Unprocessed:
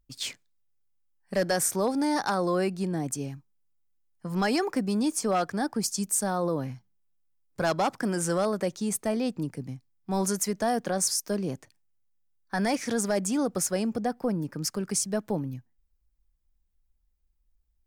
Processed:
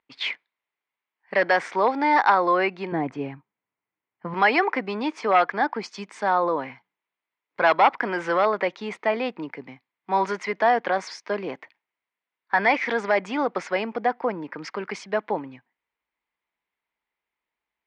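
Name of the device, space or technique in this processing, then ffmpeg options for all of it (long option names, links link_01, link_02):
phone earpiece: -filter_complex "[0:a]asettb=1/sr,asplit=3[link_01][link_02][link_03];[link_01]atrim=end=2.924[link_04];[link_02]atrim=start=2.92:end=4.34,asetpts=PTS-STARTPTS,afade=type=in:duration=0.004:curve=qsin,afade=type=out:start_time=1.416:duration=0.004:curve=qsin,aemphasis=mode=reproduction:type=riaa[link_05];[link_03]atrim=start=4.336[link_06];[link_04][link_05]acrossfade=duration=0.004:curve1=hsin:curve2=qsin[link_07];[link_07][link_06]acrossfade=duration=0.004:curve1=qsin:curve2=hsin,highpass=490,equalizer=frequency=570:width_type=q:width=4:gain=-3,equalizer=frequency=960:width_type=q:width=4:gain=6,equalizer=frequency=2100:width_type=q:width=4:gain=9,lowpass=frequency=3300:width=0.5412,lowpass=frequency=3300:width=1.3066,volume=8.5dB"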